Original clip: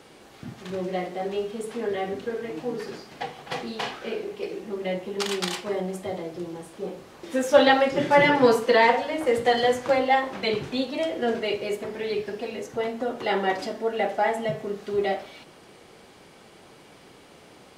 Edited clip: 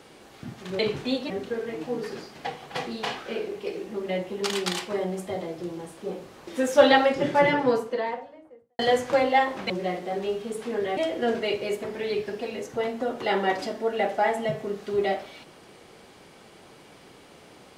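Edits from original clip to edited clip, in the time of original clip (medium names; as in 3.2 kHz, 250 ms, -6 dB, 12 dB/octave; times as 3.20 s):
0.79–2.06 s: swap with 10.46–10.97 s
7.61–9.55 s: studio fade out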